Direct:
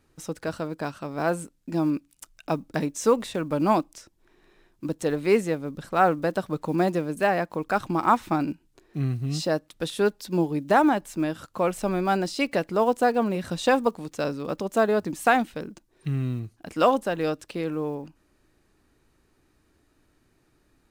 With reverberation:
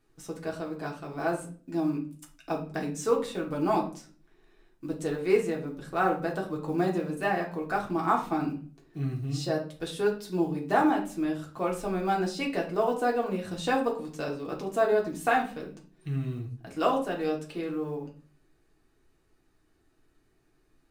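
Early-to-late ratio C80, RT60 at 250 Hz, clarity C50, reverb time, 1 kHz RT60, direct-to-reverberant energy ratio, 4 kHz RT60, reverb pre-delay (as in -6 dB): 14.5 dB, 0.60 s, 10.0 dB, 0.45 s, 0.40 s, -2.0 dB, 0.35 s, 3 ms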